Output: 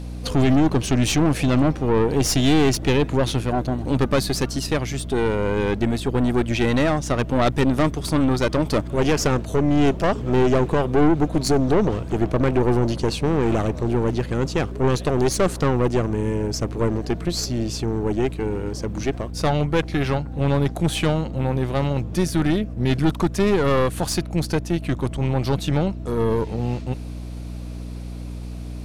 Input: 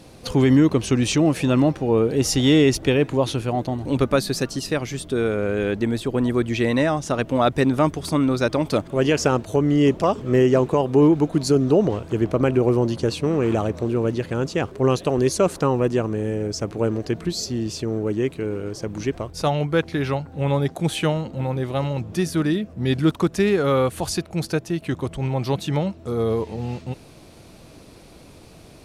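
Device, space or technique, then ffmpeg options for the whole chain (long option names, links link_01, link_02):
valve amplifier with mains hum: -af "aeval=exprs='(tanh(7.94*val(0)+0.6)-tanh(0.6))/7.94':channel_layout=same,aeval=exprs='val(0)+0.0178*(sin(2*PI*60*n/s)+sin(2*PI*2*60*n/s)/2+sin(2*PI*3*60*n/s)/3+sin(2*PI*4*60*n/s)/4+sin(2*PI*5*60*n/s)/5)':channel_layout=same,volume=4.5dB"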